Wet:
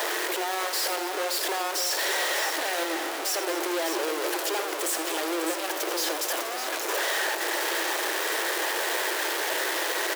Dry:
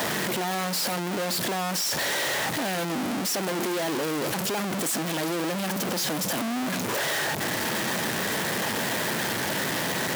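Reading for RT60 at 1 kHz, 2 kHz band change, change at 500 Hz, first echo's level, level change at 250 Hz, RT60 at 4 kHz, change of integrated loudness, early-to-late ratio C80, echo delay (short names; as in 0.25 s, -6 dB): none, +1.0 dB, +0.5 dB, -11.0 dB, -6.5 dB, none, 0.0 dB, none, 81 ms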